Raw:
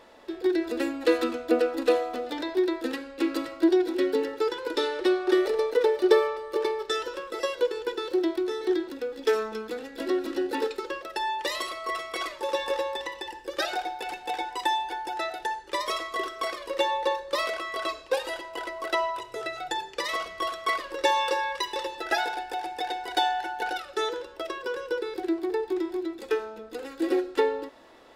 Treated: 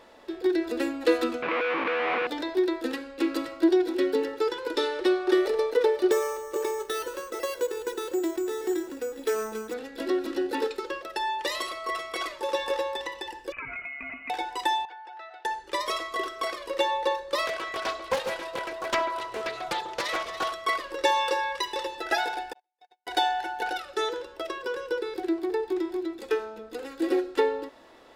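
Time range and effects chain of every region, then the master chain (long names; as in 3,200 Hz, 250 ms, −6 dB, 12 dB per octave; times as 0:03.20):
0:01.42–0:02.27: comparator with hysteresis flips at −38.5 dBFS + loudspeaker in its box 430–2,900 Hz, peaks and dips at 650 Hz −4 dB, 1,100 Hz +7 dB, 2,300 Hz +8 dB
0:06.11–0:09.74: phase distortion by the signal itself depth 0.093 ms + downward compressor 1.5 to 1, threshold −27 dBFS + bad sample-rate conversion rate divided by 6×, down filtered, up hold
0:13.52–0:14.30: voice inversion scrambler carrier 2,900 Hz + downward compressor 4 to 1, threshold −34 dBFS
0:14.85–0:15.45: high-pass filter 980 Hz + head-to-tape spacing loss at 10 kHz 33 dB + downward compressor 2.5 to 1, threshold −41 dBFS
0:17.47–0:20.53: delay that swaps between a low-pass and a high-pass 142 ms, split 1,100 Hz, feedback 71%, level −8 dB + highs frequency-modulated by the lows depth 0.48 ms
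0:22.53–0:23.07: high-pass filter 380 Hz 24 dB per octave + noise gate −27 dBFS, range −51 dB + downward compressor 3 to 1, threshold −54 dBFS
whole clip: no processing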